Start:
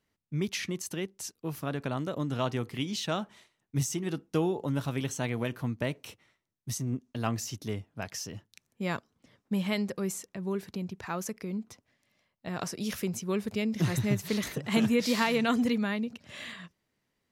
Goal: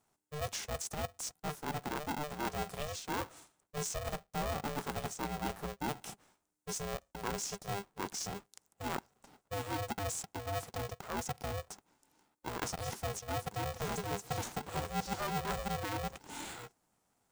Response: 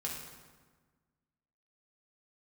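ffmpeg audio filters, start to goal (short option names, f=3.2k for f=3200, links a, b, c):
-filter_complex "[0:a]acrossover=split=6100[a][b];[b]acompressor=threshold=-54dB:ratio=4:attack=1:release=60[c];[a][c]amix=inputs=2:normalize=0,equalizer=f=125:t=o:w=1:g=-3,equalizer=f=250:t=o:w=1:g=-8,equalizer=f=500:t=o:w=1:g=9,equalizer=f=1k:t=o:w=1:g=6,equalizer=f=2k:t=o:w=1:g=-12,equalizer=f=4k:t=o:w=1:g=-6,equalizer=f=8k:t=o:w=1:g=11,areverse,acompressor=threshold=-36dB:ratio=5,areverse,aeval=exprs='val(0)*sgn(sin(2*PI*300*n/s))':c=same,volume=1dB"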